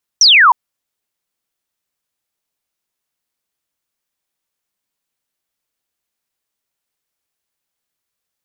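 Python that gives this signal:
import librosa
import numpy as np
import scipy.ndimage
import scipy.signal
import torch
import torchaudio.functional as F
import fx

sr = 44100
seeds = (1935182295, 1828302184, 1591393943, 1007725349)

y = fx.laser_zap(sr, level_db=-4.5, start_hz=6100.0, end_hz=900.0, length_s=0.31, wave='sine')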